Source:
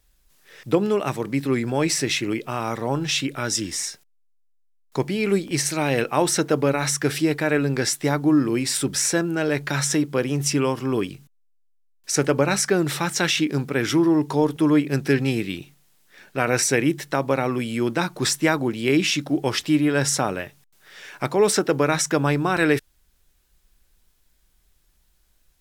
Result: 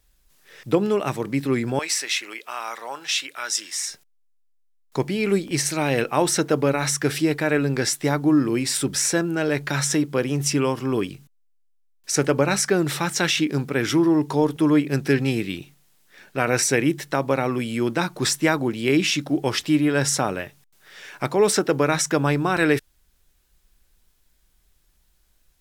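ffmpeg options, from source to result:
-filter_complex "[0:a]asettb=1/sr,asplit=3[a][b][c];[a]atrim=end=1.794[d];[b]atrim=start=1.79:end=3.89,asetpts=PTS-STARTPTS,afade=t=in:d=0.004:c=qsin,afade=t=out:st=2.096:d=0.004:c=qsin,highpass=920[e];[c]atrim=start=3.886[f];[d][e]acrossfade=d=0.004:c1=hsin:c2=qsin[g];[g][f]acrossfade=d=0.004:c1=qsin:c2=hsin"

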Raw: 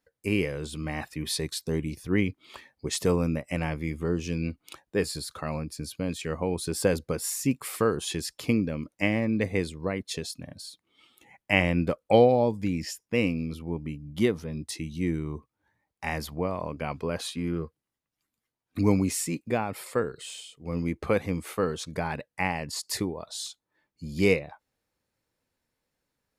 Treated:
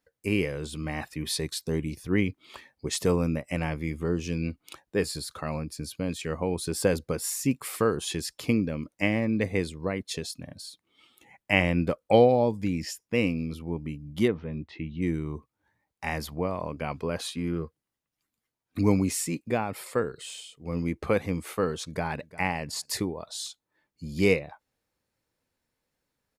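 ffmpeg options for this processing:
-filter_complex "[0:a]asplit=3[a][b][c];[a]afade=t=out:st=14.27:d=0.02[d];[b]lowpass=f=3k:w=0.5412,lowpass=f=3k:w=1.3066,afade=t=in:st=14.27:d=0.02,afade=t=out:st=15.01:d=0.02[e];[c]afade=t=in:st=15.01:d=0.02[f];[d][e][f]amix=inputs=3:normalize=0,asplit=2[g][h];[h]afade=t=in:st=21.84:d=0.01,afade=t=out:st=22.28:d=0.01,aecho=0:1:350|700:0.125893|0.0188839[i];[g][i]amix=inputs=2:normalize=0"

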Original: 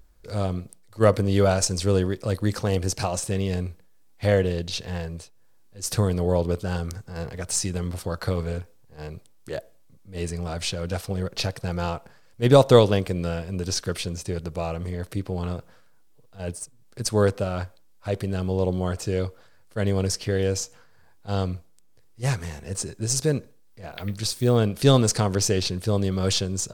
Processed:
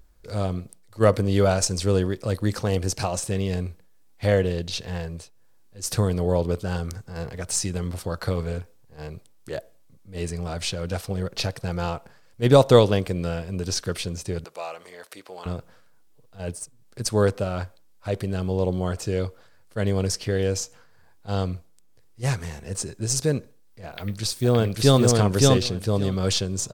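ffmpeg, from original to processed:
-filter_complex "[0:a]asettb=1/sr,asplit=3[a][b][c];[a]atrim=end=14.444[d];[b]atrim=start=14.44:end=15.46,asetpts=PTS-STARTPTS,afade=t=in:d=0.004:c=qsin,afade=t=out:st=1.016:d=0.004:c=qsin,highpass=700[e];[c]atrim=start=15.456[f];[d][e]acrossfade=d=0.004:c1=hsin:c2=qsin[g];[g][f]acrossfade=d=0.004:c1=qsin:c2=hsin,asplit=2[h][i];[i]afade=t=in:st=23.87:d=0.01,afade=t=out:st=25:d=0.01,aecho=0:1:570|1140|1710:0.891251|0.133688|0.0200531[j];[h][j]amix=inputs=2:normalize=0"

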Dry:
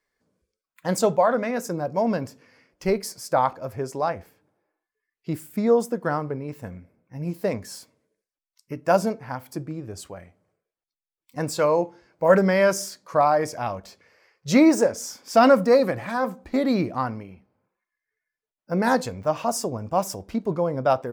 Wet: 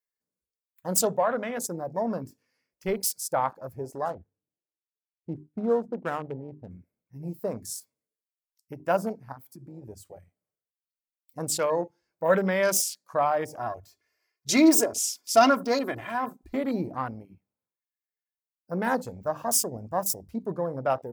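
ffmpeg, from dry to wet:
-filter_complex "[0:a]asettb=1/sr,asplit=3[a][b][c];[a]atrim=end=4.054[d];[b]atrim=start=4.05:end=6.71,asetpts=PTS-STARTPTS,afade=t=in:d=0.004:c=qsin,afade=t=out:st=2.656:d=0.004:c=qsin,adynamicsmooth=sensitivity=4:basefreq=520[e];[c]atrim=start=6.706[f];[d][e]acrossfade=d=0.004:c1=hsin:c2=qsin[g];[g][f]acrossfade=d=0.004:c1=qsin:c2=hsin,asettb=1/sr,asplit=3[h][i][j];[h]atrim=end=9.324[k];[i]atrim=start=9.32:end=9.83,asetpts=PTS-STARTPTS,afade=t=in:d=0.004:c=qsin,afade=t=out:st=0.506:d=0.004:c=qsin,acompressor=threshold=-32dB:ratio=12:attack=3.2:release=140:knee=1:detection=peak[l];[j]atrim=start=9.826[m];[k][l]acrossfade=d=0.004:c1=hsin:c2=qsin[n];[n][m]acrossfade=d=0.004:c1=qsin:c2=hsin,asettb=1/sr,asplit=3[o][p][q];[o]atrim=end=13.594[r];[p]atrim=start=13.59:end=16.55,asetpts=PTS-STARTPTS,afade=t=in:d=0.004:c=qsin,afade=t=out:st=2.956:d=0.004:c=qsin,aecho=1:1:2.9:0.69,atrim=end_sample=130536[s];[q]atrim=start=16.546[t];[r][s]acrossfade=d=0.004:c1=hsin:c2=qsin[u];[u][t]acrossfade=d=0.004:c1=qsin:c2=hsin,aemphasis=mode=production:type=75fm,bandreject=f=50:t=h:w=6,bandreject=f=100:t=h:w=6,bandreject=f=150:t=h:w=6,bandreject=f=200:t=h:w=6,bandreject=f=250:t=h:w=6,bandreject=f=300:t=h:w=6,afwtdn=0.0251,volume=-5dB"

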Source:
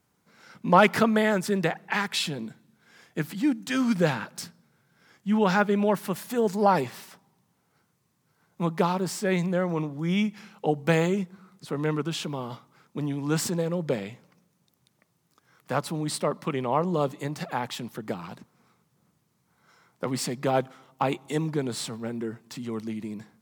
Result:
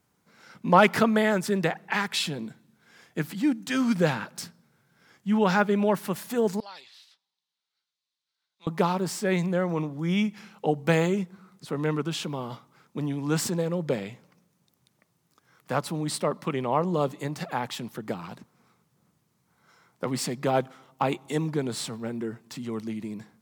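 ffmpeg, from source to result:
-filter_complex "[0:a]asettb=1/sr,asplit=3[a][b][c];[a]atrim=end=6.604[d];[b]atrim=start=6.6:end=8.67,asetpts=PTS-STARTPTS,afade=t=in:d=0.004:c=qsin,afade=t=out:st=2.066:d=0.004:c=qsin,bandpass=f=3.9k:t=q:w=3.7[e];[c]atrim=start=8.666[f];[d][e]acrossfade=d=0.004:c1=hsin:c2=qsin[g];[g][f]acrossfade=d=0.004:c1=qsin:c2=hsin"

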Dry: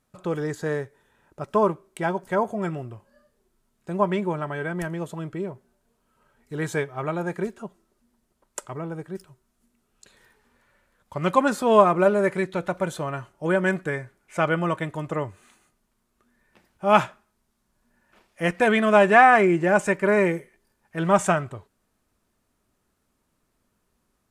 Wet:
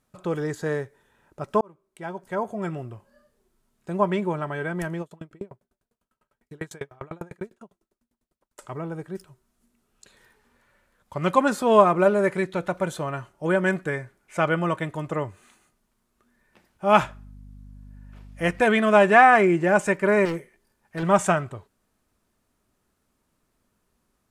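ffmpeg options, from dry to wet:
-filter_complex "[0:a]asettb=1/sr,asplit=3[a][b][c];[a]atrim=end=5.014[d];[b]atrim=start=5.01:end=8.59,asetpts=PTS-STARTPTS,afade=t=in:d=0.004:c=qsin,afade=t=out:st=3.576:d=0.004:c=qsin,aeval=exprs='val(0)*pow(10,-36*if(lt(mod(10*n/s,1),2*abs(10)/1000),1-mod(10*n/s,1)/(2*abs(10)/1000),(mod(10*n/s,1)-2*abs(10)/1000)/(1-2*abs(10)/1000))/20)':c=same[e];[c]atrim=start=8.586[f];[d][e]acrossfade=d=0.004:c1=hsin:c2=qsin[g];[g][f]acrossfade=d=0.004:c1=qsin:c2=hsin,asettb=1/sr,asplit=3[h][i][j];[h]atrim=end=17.014[k];[i]atrim=start=17.01:end=18.62,asetpts=PTS-STARTPTS,afade=t=in:d=0.004:c=qsin,afade=t=out:st=1.606:d=0.004:c=qsin,aeval=exprs='val(0)+0.00708*(sin(2*PI*50*n/s)+sin(2*PI*2*50*n/s)/2+sin(2*PI*3*50*n/s)/3+sin(2*PI*4*50*n/s)/4+sin(2*PI*5*50*n/s)/5)':c=same[l];[j]atrim=start=18.616[m];[k][l]acrossfade=d=0.004:c1=hsin:c2=qsin[n];[n][m]acrossfade=d=0.004:c1=qsin:c2=hsin,asettb=1/sr,asplit=3[o][p][q];[o]atrim=end=20.254[r];[p]atrim=start=20.25:end=21.03,asetpts=PTS-STARTPTS,afade=t=in:d=0.004:c=qsin,afade=t=out:st=0.776:d=0.004:c=qsin,volume=25dB,asoftclip=hard,volume=-25dB[s];[q]atrim=start=21.026[t];[r][s]acrossfade=d=0.004:c1=hsin:c2=qsin[u];[u][t]acrossfade=d=0.004:c1=qsin:c2=hsin,asplit=2[v][w];[v]atrim=end=1.61,asetpts=PTS-STARTPTS,afade=t=out:st=1.606:d=0.004:c=hsin[x];[w]atrim=start=1.61,asetpts=PTS-STARTPTS,afade=t=in:d=1.29[y];[x][y]concat=n=2:v=0:a=1"

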